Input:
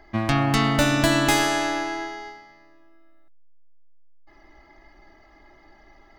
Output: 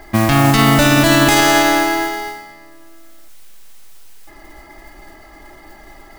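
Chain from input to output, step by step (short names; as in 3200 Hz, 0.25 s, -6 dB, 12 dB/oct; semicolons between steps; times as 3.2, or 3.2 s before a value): modulation noise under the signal 15 dB; maximiser +13 dB; gain -1 dB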